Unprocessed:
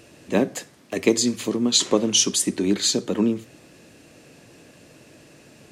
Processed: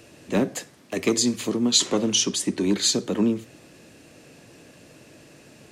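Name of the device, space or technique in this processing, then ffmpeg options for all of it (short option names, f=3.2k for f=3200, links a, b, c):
one-band saturation: -filter_complex "[0:a]asettb=1/sr,asplit=3[a][b][c];[a]atrim=end=2.154[d];[b]atrim=start=2.15:end=2.58,asetpts=PTS-STARTPTS,afade=t=in:d=0.004:c=qsin,afade=t=out:st=0.426:d=0.004:c=qsin,highshelf=f=7.6k:g=-11.5[e];[c]atrim=start=2.576[f];[d][e]acrossfade=d=0.004:c1=hsin:c2=qsin[g];[g][f]acrossfade=d=0.004:c1=qsin:c2=hsin,acrossover=split=260|3400[h][i][j];[i]asoftclip=type=tanh:threshold=-18.5dB[k];[h][k][j]amix=inputs=3:normalize=0"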